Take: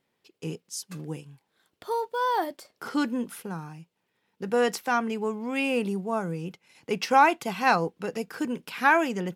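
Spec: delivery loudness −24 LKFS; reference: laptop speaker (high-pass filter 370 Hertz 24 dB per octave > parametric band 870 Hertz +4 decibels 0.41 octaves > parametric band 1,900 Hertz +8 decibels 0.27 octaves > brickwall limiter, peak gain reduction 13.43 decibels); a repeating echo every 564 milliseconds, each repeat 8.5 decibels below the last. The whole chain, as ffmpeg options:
ffmpeg -i in.wav -af "highpass=frequency=370:width=0.5412,highpass=frequency=370:width=1.3066,equalizer=frequency=870:width_type=o:width=0.41:gain=4,equalizer=frequency=1900:width_type=o:width=0.27:gain=8,aecho=1:1:564|1128|1692|2256:0.376|0.143|0.0543|0.0206,volume=5.5dB,alimiter=limit=-12.5dB:level=0:latency=1" out.wav

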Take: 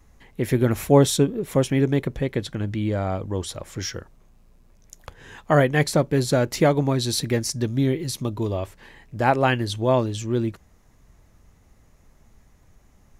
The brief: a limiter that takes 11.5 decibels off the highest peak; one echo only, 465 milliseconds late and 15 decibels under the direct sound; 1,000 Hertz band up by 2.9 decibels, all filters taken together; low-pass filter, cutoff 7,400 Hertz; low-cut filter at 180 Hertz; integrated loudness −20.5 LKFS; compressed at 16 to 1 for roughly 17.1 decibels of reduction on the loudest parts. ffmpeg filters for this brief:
ffmpeg -i in.wav -af "highpass=180,lowpass=7400,equalizer=frequency=1000:width_type=o:gain=4,acompressor=threshold=-27dB:ratio=16,alimiter=level_in=0.5dB:limit=-24dB:level=0:latency=1,volume=-0.5dB,aecho=1:1:465:0.178,volume=15.5dB" out.wav

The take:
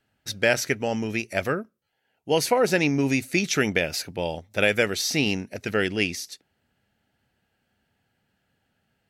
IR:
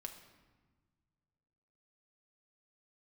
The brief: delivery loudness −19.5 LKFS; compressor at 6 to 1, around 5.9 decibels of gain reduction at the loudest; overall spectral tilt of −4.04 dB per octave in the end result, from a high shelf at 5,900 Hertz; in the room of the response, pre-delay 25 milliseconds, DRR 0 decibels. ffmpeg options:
-filter_complex "[0:a]highshelf=frequency=5900:gain=-5,acompressor=threshold=-22dB:ratio=6,asplit=2[link_01][link_02];[1:a]atrim=start_sample=2205,adelay=25[link_03];[link_02][link_03]afir=irnorm=-1:irlink=0,volume=4dB[link_04];[link_01][link_04]amix=inputs=2:normalize=0,volume=6dB"

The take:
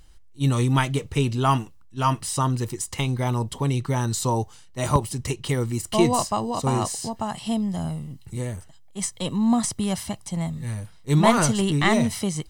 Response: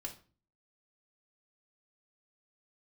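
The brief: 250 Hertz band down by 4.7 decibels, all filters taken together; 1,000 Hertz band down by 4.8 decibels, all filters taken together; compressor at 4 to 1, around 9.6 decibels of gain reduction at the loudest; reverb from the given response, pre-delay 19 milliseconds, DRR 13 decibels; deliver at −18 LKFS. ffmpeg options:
-filter_complex "[0:a]equalizer=frequency=250:width_type=o:gain=-6,equalizer=frequency=1000:width_type=o:gain=-5.5,acompressor=threshold=-28dB:ratio=4,asplit=2[link_01][link_02];[1:a]atrim=start_sample=2205,adelay=19[link_03];[link_02][link_03]afir=irnorm=-1:irlink=0,volume=-10.5dB[link_04];[link_01][link_04]amix=inputs=2:normalize=0,volume=14dB"

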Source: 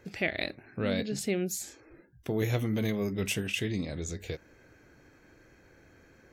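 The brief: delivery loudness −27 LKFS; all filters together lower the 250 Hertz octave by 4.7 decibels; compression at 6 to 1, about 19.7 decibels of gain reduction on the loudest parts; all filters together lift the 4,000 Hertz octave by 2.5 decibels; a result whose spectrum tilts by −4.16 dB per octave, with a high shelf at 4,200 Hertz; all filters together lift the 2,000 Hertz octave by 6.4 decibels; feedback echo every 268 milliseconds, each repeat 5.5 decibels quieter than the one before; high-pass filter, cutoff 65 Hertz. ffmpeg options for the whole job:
ffmpeg -i in.wav -af "highpass=65,equalizer=frequency=250:width_type=o:gain=-6.5,equalizer=frequency=2000:width_type=o:gain=8.5,equalizer=frequency=4000:width_type=o:gain=4.5,highshelf=frequency=4200:gain=-9,acompressor=threshold=-44dB:ratio=6,aecho=1:1:268|536|804|1072|1340|1608|1876:0.531|0.281|0.149|0.079|0.0419|0.0222|0.0118,volume=19.5dB" out.wav

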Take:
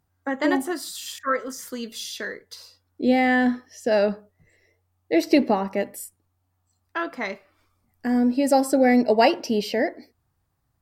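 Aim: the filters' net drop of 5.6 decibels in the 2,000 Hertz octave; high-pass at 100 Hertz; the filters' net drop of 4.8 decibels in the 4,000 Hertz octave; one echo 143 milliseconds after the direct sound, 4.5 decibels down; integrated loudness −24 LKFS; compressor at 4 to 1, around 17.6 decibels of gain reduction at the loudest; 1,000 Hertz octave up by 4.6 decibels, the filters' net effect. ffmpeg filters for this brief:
ffmpeg -i in.wav -af "highpass=100,equalizer=frequency=1000:width_type=o:gain=8.5,equalizer=frequency=2000:width_type=o:gain=-8.5,equalizer=frequency=4000:width_type=o:gain=-4,acompressor=threshold=-32dB:ratio=4,aecho=1:1:143:0.596,volume=10dB" out.wav

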